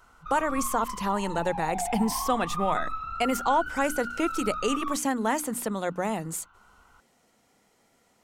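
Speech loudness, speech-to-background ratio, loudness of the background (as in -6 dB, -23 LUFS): -28.5 LUFS, 6.0 dB, -34.5 LUFS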